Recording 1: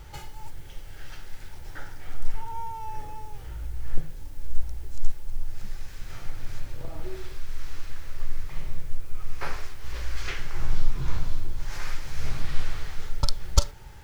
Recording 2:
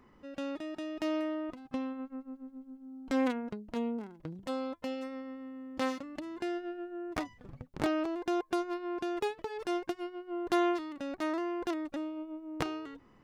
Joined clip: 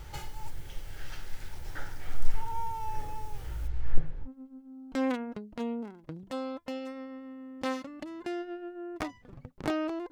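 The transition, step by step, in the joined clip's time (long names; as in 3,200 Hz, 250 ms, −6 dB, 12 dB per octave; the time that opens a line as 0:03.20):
recording 1
0:03.67–0:04.29: low-pass filter 4,600 Hz → 1,400 Hz
0:04.26: continue with recording 2 from 0:02.42, crossfade 0.06 s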